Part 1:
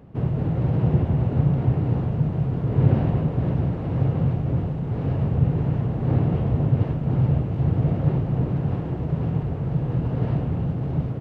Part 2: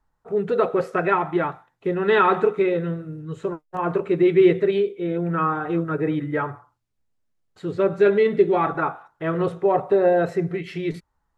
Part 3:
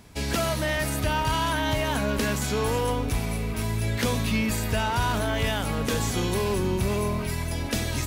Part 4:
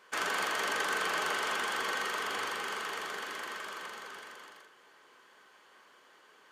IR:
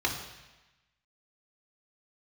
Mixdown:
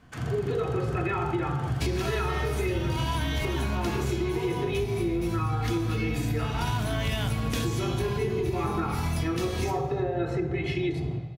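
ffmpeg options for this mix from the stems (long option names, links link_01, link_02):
-filter_complex "[0:a]equalizer=frequency=710:width_type=o:width=0.37:gain=9,volume=-15.5dB,asplit=2[link_01][link_02];[link_02]volume=-4dB[link_03];[1:a]aecho=1:1:2.4:0.65,alimiter=limit=-13dB:level=0:latency=1,volume=-3dB,asplit=3[link_04][link_05][link_06];[link_05]volume=-7.5dB[link_07];[2:a]aeval=exprs='sgn(val(0))*max(abs(val(0))-0.00119,0)':channel_layout=same,adelay=1650,volume=3dB,asplit=2[link_08][link_09];[link_09]volume=-13dB[link_10];[3:a]acompressor=threshold=-37dB:ratio=6,volume=-3.5dB[link_11];[link_06]apad=whole_len=428630[link_12];[link_08][link_12]sidechaincompress=threshold=-32dB:ratio=8:attack=16:release=421[link_13];[4:a]atrim=start_sample=2205[link_14];[link_03][link_07][link_10]amix=inputs=3:normalize=0[link_15];[link_15][link_14]afir=irnorm=-1:irlink=0[link_16];[link_01][link_04][link_13][link_11][link_16]amix=inputs=5:normalize=0,acompressor=threshold=-24dB:ratio=10"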